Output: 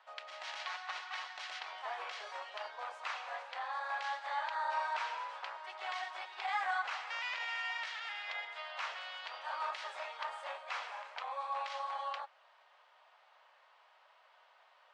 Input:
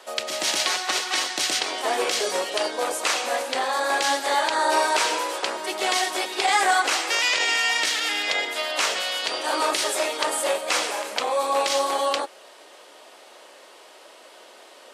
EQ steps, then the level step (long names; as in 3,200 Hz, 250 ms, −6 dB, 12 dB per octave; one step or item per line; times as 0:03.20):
high-pass filter 840 Hz 24 dB per octave
head-to-tape spacing loss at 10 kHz 37 dB
−8.0 dB